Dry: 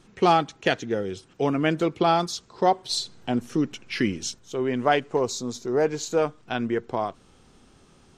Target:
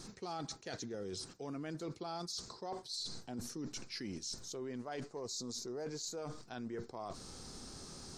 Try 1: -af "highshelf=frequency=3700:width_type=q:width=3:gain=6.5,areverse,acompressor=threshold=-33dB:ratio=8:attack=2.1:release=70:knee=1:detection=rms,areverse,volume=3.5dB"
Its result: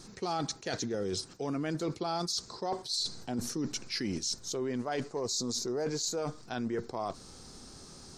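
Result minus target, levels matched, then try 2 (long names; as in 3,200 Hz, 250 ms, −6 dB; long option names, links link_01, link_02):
downward compressor: peak gain reduction −9 dB
-af "highshelf=frequency=3700:width_type=q:width=3:gain=6.5,areverse,acompressor=threshold=-43.5dB:ratio=8:attack=2.1:release=70:knee=1:detection=rms,areverse,volume=3.5dB"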